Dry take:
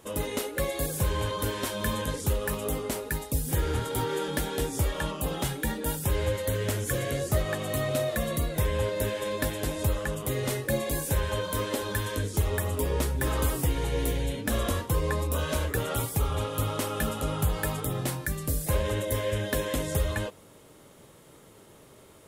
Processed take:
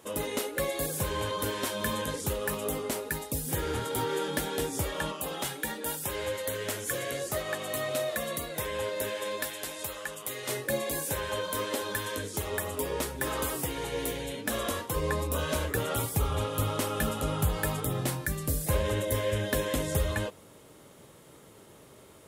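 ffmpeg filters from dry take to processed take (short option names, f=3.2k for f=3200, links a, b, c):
-af "asetnsamples=n=441:p=0,asendcmd='5.12 highpass f 530;9.42 highpass f 1300;10.49 highpass f 340;14.96 highpass f 100;16.05 highpass f 46',highpass=f=180:p=1"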